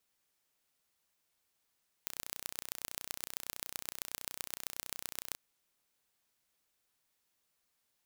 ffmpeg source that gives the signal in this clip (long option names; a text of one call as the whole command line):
ffmpeg -f lavfi -i "aevalsrc='0.355*eq(mod(n,1432),0)*(0.5+0.5*eq(mod(n,5728),0))':duration=3.31:sample_rate=44100" out.wav